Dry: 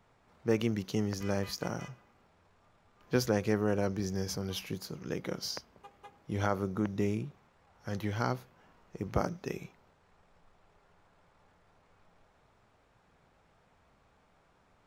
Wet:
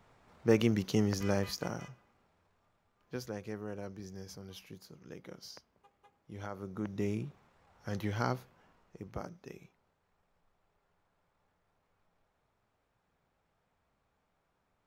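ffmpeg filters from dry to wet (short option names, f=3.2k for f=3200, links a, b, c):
-af "volume=13.5dB,afade=t=out:st=1.14:d=0.72:silence=0.473151,afade=t=out:st=1.86:d=1.32:silence=0.398107,afade=t=in:st=6.53:d=0.75:silence=0.281838,afade=t=out:st=8.38:d=0.75:silence=0.316228"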